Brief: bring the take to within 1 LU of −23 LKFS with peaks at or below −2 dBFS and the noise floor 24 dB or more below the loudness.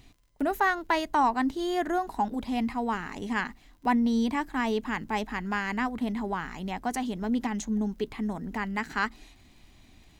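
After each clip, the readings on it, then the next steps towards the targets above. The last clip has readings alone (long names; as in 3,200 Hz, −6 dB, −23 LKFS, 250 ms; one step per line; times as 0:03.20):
crackle rate 38 per second; integrated loudness −29.5 LKFS; sample peak −14.5 dBFS; target loudness −23.0 LKFS
→ click removal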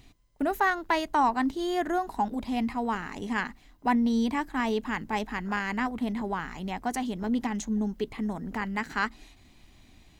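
crackle rate 0.20 per second; integrated loudness −29.5 LKFS; sample peak −14.5 dBFS; target loudness −23.0 LKFS
→ level +6.5 dB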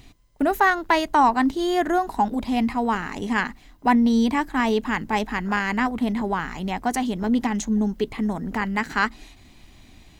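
integrated loudness −23.0 LKFS; sample peak −8.0 dBFS; background noise floor −50 dBFS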